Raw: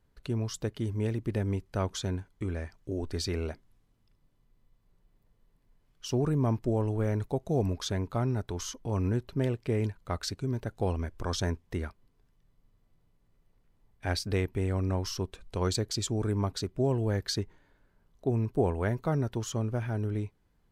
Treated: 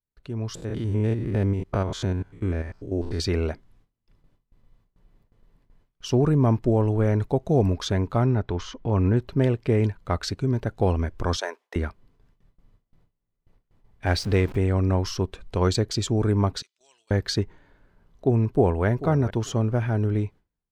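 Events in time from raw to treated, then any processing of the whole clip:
0.55–3.20 s: spectrogram pixelated in time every 100 ms
8.26–9.17 s: low-pass 3.9 kHz
11.36–11.76 s: high-pass 510 Hz 24 dB/octave
14.06–14.57 s: jump at every zero crossing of -40.5 dBFS
16.62–17.11 s: Butterworth band-pass 5.4 kHz, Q 1.2
18.46–18.86 s: echo throw 440 ms, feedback 15%, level -14 dB
whole clip: gate with hold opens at -57 dBFS; treble shelf 6.4 kHz -11.5 dB; level rider gain up to 11.5 dB; trim -3.5 dB

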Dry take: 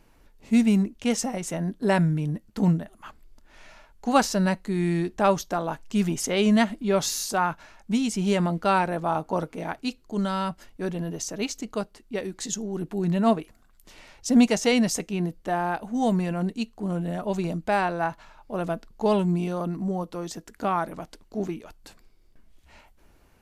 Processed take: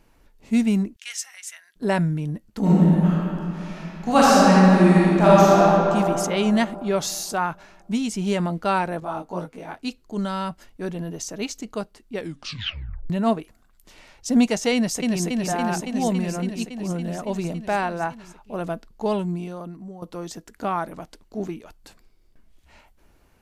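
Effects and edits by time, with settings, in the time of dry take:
0.96–1.76 s: Chebyshev high-pass 1.7 kHz, order 3
2.59–5.65 s: reverb throw, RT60 3 s, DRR -8.5 dB
9.00–9.83 s: detune thickener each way 14 cents
12.16 s: tape stop 0.94 s
14.74–15.24 s: echo throw 280 ms, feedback 80%, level -2 dB
18.87–20.02 s: fade out, to -13.5 dB

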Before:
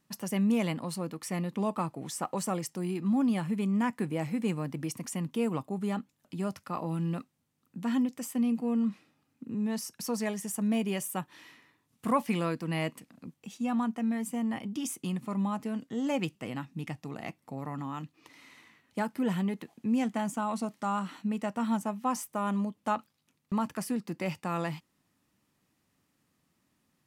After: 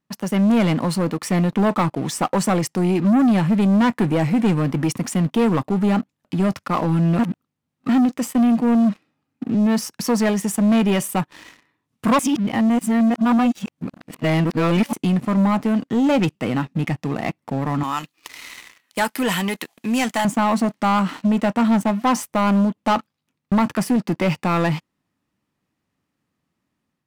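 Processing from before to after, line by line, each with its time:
7.19–7.89 s: reverse
12.19–14.93 s: reverse
17.83–20.25 s: tilt EQ +4.5 dB/octave
whole clip: treble shelf 5.3 kHz -10 dB; level rider gain up to 5 dB; waveshaping leveller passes 3

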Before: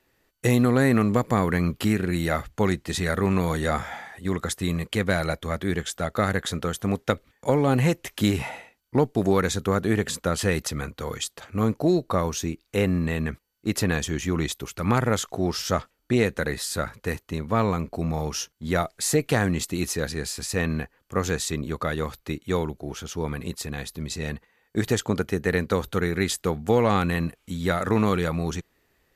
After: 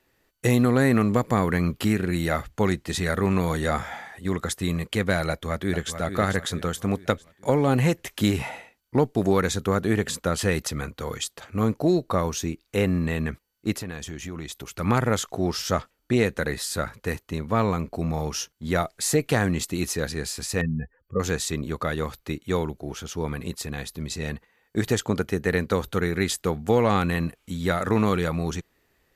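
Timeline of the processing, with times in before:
5.29–5.92 s: echo throw 440 ms, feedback 45%, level -9 dB
13.75–14.74 s: compression 3:1, threshold -33 dBFS
20.61–21.20 s: spectral contrast enhancement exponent 2.5

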